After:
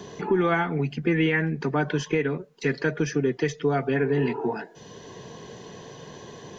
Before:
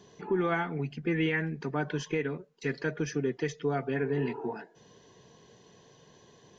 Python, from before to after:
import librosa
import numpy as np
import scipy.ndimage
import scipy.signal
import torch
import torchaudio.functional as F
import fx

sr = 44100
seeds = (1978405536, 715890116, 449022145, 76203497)

y = fx.band_squash(x, sr, depth_pct=40)
y = F.gain(torch.from_numpy(y), 6.5).numpy()